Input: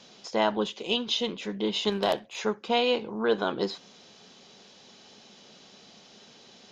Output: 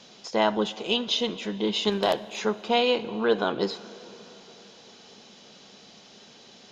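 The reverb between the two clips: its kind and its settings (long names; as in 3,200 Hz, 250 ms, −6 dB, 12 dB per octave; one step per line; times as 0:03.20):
dense smooth reverb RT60 4.4 s, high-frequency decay 0.8×, DRR 16 dB
level +2 dB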